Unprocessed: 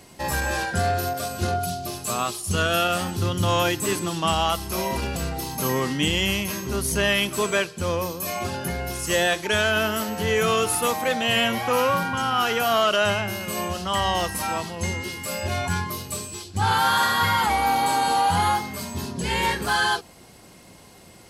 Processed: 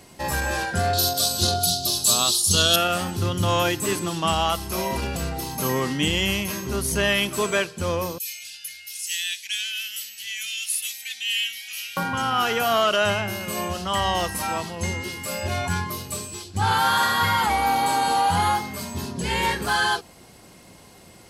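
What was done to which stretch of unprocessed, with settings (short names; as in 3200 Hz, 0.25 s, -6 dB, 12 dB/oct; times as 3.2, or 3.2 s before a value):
0.93–2.76 resonant high shelf 2900 Hz +10 dB, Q 3
8.18–11.97 inverse Chebyshev high-pass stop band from 1200 Hz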